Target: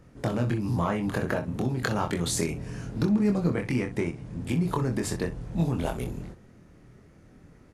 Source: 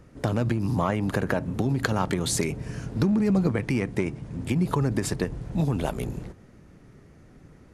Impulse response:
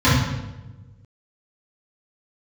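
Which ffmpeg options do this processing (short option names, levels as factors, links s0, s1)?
-af "aecho=1:1:24|63:0.631|0.237,volume=0.668"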